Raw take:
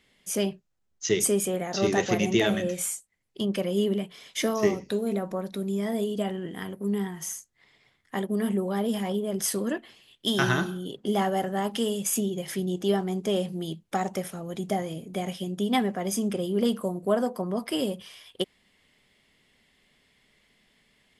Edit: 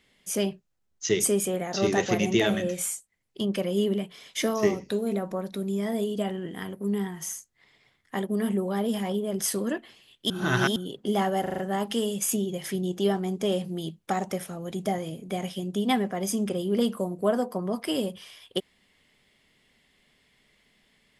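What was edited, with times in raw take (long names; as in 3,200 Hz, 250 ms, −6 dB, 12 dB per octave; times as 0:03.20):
0:10.30–0:10.76: reverse
0:11.42: stutter 0.04 s, 5 plays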